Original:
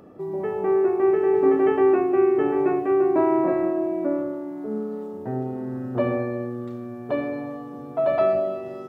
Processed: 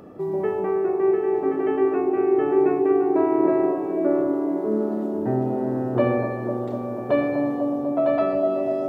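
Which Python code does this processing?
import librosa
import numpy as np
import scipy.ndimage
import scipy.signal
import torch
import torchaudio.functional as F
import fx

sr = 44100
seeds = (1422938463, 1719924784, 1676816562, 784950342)

p1 = fx.rider(x, sr, range_db=4, speed_s=0.5)
y = p1 + fx.echo_wet_bandpass(p1, sr, ms=247, feedback_pct=84, hz=420.0, wet_db=-5.5, dry=0)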